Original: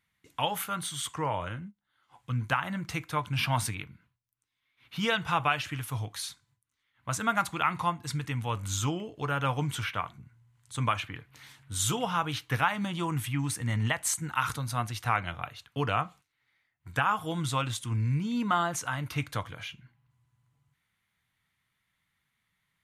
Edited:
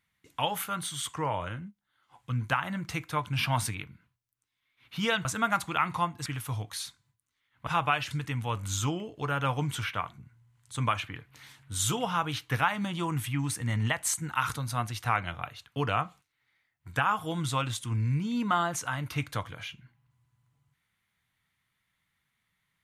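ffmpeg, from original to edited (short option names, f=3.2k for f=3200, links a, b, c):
-filter_complex "[0:a]asplit=5[a][b][c][d][e];[a]atrim=end=5.252[f];[b]atrim=start=7.098:end=8.112[g];[c]atrim=start=5.688:end=7.102[h];[d]atrim=start=5.248:end=5.692[i];[e]atrim=start=8.108[j];[f][g]acrossfade=d=0.004:c1=hsin:c2=hsin[k];[k][h]acrossfade=d=0.004:c1=hsin:c2=hsin[l];[l][i]acrossfade=d=0.004:c1=hsin:c2=hsin[m];[m][j]acrossfade=d=0.004:c1=hsin:c2=hsin"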